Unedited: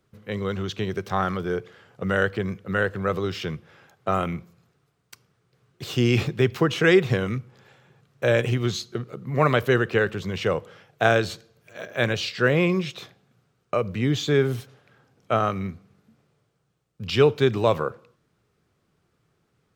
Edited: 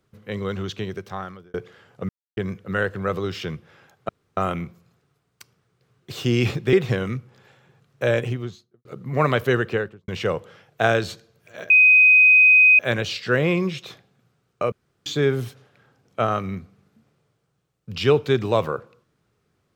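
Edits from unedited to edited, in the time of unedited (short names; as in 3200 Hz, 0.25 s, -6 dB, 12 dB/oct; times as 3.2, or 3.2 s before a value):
0.67–1.54 fade out
2.09–2.37 mute
4.09 insert room tone 0.28 s
6.45–6.94 cut
8.24–9.06 studio fade out
9.85–10.29 studio fade out
11.91 add tone 2510 Hz -9.5 dBFS 1.09 s
13.84–14.18 room tone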